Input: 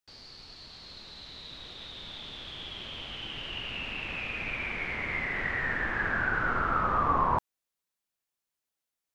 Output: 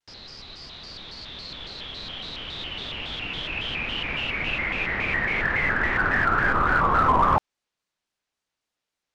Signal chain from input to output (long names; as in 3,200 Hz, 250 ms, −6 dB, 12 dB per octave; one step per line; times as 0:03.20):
low-pass filter 5,800 Hz 12 dB per octave
in parallel at −5 dB: gain into a clipping stage and back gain 23.5 dB
on the sum: pitch modulation by a square or saw wave square 3.6 Hz, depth 160 cents
level +3.5 dB